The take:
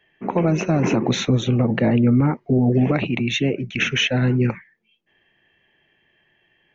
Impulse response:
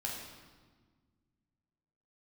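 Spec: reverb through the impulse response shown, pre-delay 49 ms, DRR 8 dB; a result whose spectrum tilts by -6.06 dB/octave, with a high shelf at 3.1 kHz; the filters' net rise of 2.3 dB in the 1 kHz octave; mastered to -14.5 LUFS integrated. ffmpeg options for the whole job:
-filter_complex "[0:a]equalizer=f=1000:t=o:g=3.5,highshelf=f=3100:g=-4,asplit=2[s0][s1];[1:a]atrim=start_sample=2205,adelay=49[s2];[s1][s2]afir=irnorm=-1:irlink=0,volume=0.335[s3];[s0][s3]amix=inputs=2:normalize=0,volume=1.58"

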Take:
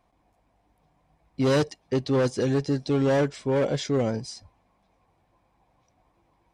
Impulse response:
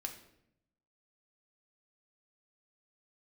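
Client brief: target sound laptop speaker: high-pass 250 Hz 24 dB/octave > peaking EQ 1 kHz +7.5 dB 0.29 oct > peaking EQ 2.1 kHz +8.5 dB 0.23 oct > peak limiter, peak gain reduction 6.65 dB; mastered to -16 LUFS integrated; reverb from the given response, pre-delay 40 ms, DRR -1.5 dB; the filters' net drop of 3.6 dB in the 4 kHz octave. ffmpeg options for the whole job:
-filter_complex "[0:a]equalizer=f=4000:t=o:g=-5,asplit=2[s0][s1];[1:a]atrim=start_sample=2205,adelay=40[s2];[s1][s2]afir=irnorm=-1:irlink=0,volume=1.41[s3];[s0][s3]amix=inputs=2:normalize=0,highpass=f=250:w=0.5412,highpass=f=250:w=1.3066,equalizer=f=1000:t=o:w=0.29:g=7.5,equalizer=f=2100:t=o:w=0.23:g=8.5,volume=2.51,alimiter=limit=0.531:level=0:latency=1"

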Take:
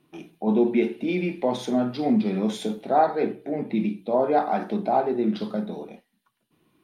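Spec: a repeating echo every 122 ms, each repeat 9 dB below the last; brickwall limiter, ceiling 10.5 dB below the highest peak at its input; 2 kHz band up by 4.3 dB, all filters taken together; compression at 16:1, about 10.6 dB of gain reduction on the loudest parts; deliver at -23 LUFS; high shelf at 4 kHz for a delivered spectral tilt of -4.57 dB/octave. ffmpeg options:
-af "equalizer=f=2000:t=o:g=4,highshelf=f=4000:g=5.5,acompressor=threshold=0.0562:ratio=16,alimiter=level_in=1.33:limit=0.0631:level=0:latency=1,volume=0.75,aecho=1:1:122|244|366|488:0.355|0.124|0.0435|0.0152,volume=3.76"

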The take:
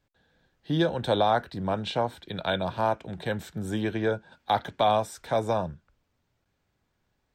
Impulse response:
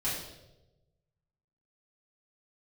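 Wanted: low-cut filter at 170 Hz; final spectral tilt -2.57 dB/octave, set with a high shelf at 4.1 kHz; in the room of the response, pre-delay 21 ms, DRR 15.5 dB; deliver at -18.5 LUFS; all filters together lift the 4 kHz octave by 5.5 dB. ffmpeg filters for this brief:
-filter_complex "[0:a]highpass=170,equalizer=f=4000:t=o:g=9,highshelf=f=4100:g=-5.5,asplit=2[s0][s1];[1:a]atrim=start_sample=2205,adelay=21[s2];[s1][s2]afir=irnorm=-1:irlink=0,volume=0.0841[s3];[s0][s3]amix=inputs=2:normalize=0,volume=2.82"

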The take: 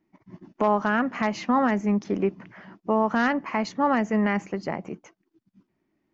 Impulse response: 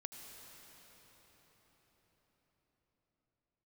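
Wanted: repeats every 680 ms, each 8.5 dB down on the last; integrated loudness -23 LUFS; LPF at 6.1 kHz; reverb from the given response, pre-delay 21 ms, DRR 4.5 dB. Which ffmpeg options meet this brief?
-filter_complex "[0:a]lowpass=6100,aecho=1:1:680|1360|2040|2720:0.376|0.143|0.0543|0.0206,asplit=2[s0][s1];[1:a]atrim=start_sample=2205,adelay=21[s2];[s1][s2]afir=irnorm=-1:irlink=0,volume=0.891[s3];[s0][s3]amix=inputs=2:normalize=0,volume=1.12"

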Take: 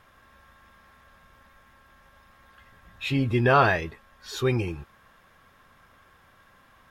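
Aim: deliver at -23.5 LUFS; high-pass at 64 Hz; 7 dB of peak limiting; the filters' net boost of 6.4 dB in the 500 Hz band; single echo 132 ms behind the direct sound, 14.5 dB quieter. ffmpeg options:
-af "highpass=64,equalizer=f=500:t=o:g=8.5,alimiter=limit=0.282:level=0:latency=1,aecho=1:1:132:0.188,volume=1.06"

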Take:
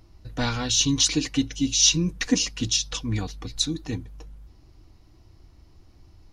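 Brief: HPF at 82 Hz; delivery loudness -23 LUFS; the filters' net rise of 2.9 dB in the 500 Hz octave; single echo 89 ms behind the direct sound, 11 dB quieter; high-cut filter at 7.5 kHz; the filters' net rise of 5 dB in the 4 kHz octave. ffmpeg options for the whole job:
-af "highpass=82,lowpass=7500,equalizer=f=500:t=o:g=3.5,equalizer=f=4000:t=o:g=6.5,aecho=1:1:89:0.282,volume=0.668"

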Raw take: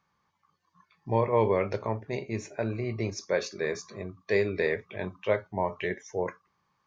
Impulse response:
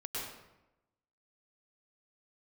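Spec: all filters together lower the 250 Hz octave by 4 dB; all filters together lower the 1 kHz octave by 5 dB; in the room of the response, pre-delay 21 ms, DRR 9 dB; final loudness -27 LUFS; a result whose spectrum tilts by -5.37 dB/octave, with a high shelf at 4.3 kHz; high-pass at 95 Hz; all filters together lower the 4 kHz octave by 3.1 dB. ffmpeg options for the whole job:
-filter_complex "[0:a]highpass=95,equalizer=f=250:t=o:g=-5.5,equalizer=f=1000:t=o:g=-5.5,equalizer=f=4000:t=o:g=-6.5,highshelf=f=4300:g=4,asplit=2[s0][s1];[1:a]atrim=start_sample=2205,adelay=21[s2];[s1][s2]afir=irnorm=-1:irlink=0,volume=0.282[s3];[s0][s3]amix=inputs=2:normalize=0,volume=1.88"

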